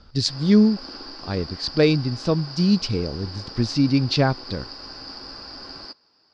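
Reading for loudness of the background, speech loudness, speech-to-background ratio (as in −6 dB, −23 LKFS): −36.5 LKFS, −21.5 LKFS, 15.0 dB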